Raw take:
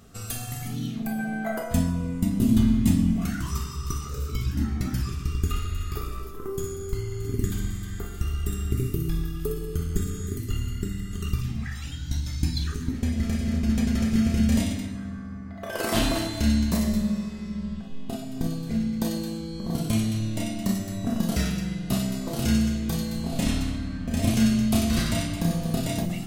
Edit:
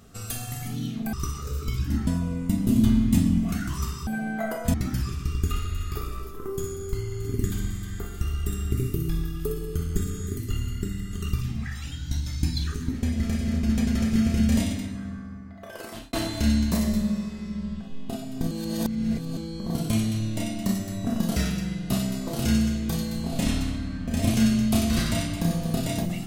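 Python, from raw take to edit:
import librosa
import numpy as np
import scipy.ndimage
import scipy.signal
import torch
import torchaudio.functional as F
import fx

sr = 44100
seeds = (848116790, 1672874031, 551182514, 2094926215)

y = fx.edit(x, sr, fx.swap(start_s=1.13, length_s=0.67, other_s=3.8, other_length_s=0.94),
    fx.fade_out_span(start_s=15.11, length_s=1.02),
    fx.reverse_span(start_s=18.51, length_s=0.86), tone=tone)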